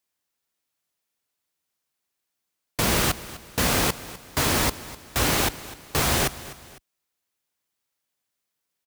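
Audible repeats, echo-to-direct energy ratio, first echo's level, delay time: 2, -16.5 dB, -17.0 dB, 0.252 s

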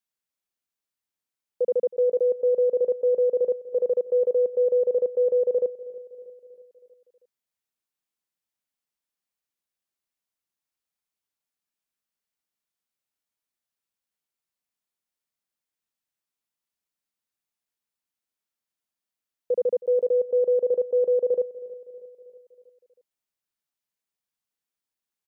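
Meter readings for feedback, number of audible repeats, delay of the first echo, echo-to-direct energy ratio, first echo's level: 54%, 4, 0.319 s, -16.5 dB, -18.0 dB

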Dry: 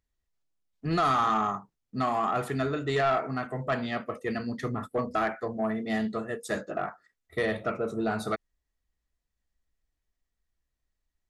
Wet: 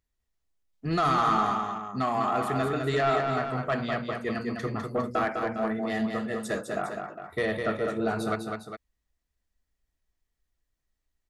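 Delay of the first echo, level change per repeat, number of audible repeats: 0.203 s, -5.0 dB, 2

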